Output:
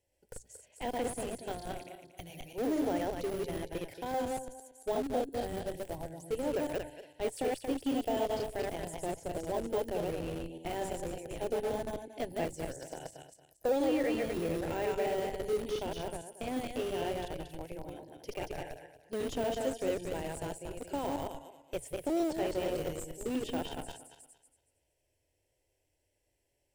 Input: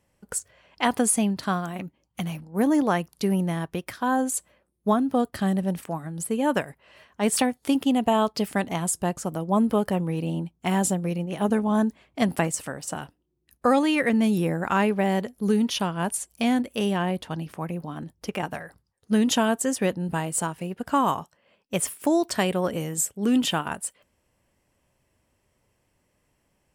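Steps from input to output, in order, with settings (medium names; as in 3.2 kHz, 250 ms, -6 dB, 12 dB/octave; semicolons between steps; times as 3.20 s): backward echo that repeats 115 ms, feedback 49%, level -1.5 dB; de-esser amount 90%; static phaser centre 490 Hz, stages 4; in parallel at -4.5 dB: Schmitt trigger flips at -27 dBFS; on the sum: hum notches 60/120 Hz; trim -8.5 dB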